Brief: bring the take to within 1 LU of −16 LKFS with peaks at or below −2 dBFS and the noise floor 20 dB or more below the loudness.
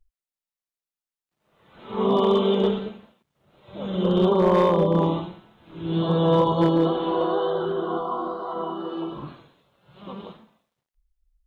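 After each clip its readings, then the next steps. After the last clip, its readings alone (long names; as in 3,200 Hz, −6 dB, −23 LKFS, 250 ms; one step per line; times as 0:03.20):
share of clipped samples 0.3%; peaks flattened at −12.5 dBFS; integrated loudness −22.5 LKFS; sample peak −12.5 dBFS; target loudness −16.0 LKFS
→ clipped peaks rebuilt −12.5 dBFS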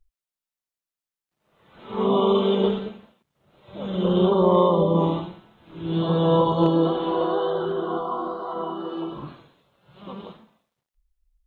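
share of clipped samples 0.0%; integrated loudness −22.5 LKFS; sample peak −7.0 dBFS; target loudness −16.0 LKFS
→ level +6.5 dB
brickwall limiter −2 dBFS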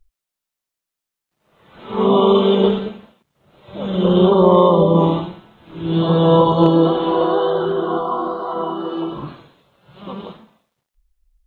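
integrated loudness −16.0 LKFS; sample peak −2.0 dBFS; background noise floor −85 dBFS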